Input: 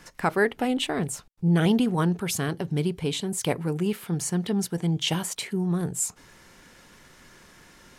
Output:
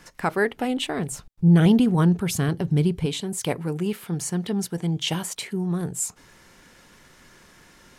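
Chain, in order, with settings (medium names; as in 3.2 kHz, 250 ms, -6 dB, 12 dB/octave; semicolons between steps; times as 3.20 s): 1.11–3.06 s: bass shelf 200 Hz +10.5 dB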